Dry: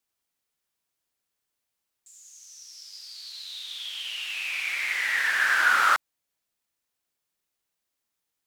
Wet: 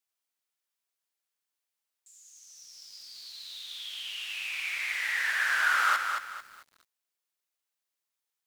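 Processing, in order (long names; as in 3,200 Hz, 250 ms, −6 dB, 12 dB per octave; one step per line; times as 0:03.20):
high-pass filter 630 Hz 6 dB per octave
feedback echo at a low word length 222 ms, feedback 35%, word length 8 bits, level −5.5 dB
level −4.5 dB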